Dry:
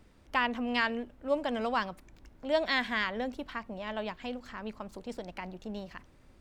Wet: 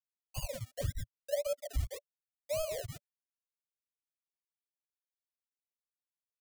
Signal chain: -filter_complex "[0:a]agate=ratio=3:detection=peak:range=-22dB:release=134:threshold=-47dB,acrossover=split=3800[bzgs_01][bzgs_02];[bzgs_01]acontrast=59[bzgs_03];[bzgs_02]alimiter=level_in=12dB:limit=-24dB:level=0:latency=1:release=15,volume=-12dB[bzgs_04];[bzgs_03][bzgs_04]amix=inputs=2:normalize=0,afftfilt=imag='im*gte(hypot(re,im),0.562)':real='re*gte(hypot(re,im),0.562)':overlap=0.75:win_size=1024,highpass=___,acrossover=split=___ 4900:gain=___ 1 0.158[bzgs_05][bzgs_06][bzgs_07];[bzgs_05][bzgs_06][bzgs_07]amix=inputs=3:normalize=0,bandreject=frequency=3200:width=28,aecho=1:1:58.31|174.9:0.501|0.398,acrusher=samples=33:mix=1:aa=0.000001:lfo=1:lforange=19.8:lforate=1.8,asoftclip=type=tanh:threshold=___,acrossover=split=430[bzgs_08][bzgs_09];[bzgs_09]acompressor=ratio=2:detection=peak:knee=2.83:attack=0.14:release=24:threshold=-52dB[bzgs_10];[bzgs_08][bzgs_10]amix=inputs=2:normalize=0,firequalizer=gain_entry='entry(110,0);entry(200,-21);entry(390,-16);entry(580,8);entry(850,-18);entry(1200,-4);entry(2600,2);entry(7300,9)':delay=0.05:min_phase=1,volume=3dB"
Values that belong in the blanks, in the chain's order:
270, 510, 0.0794, -25dB